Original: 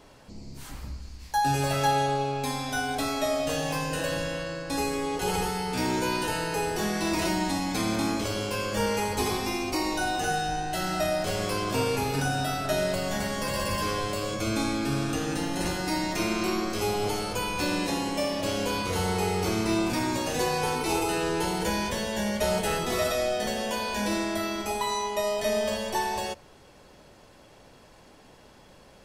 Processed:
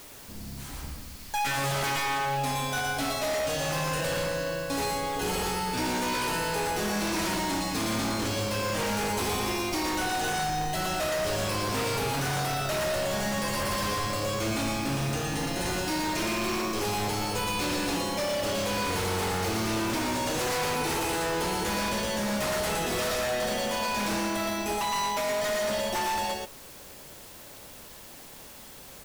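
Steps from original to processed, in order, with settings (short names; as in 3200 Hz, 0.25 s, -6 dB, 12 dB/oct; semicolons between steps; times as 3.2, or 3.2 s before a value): echo 0.117 s -3 dB; requantised 8-bit, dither triangular; wavefolder -23.5 dBFS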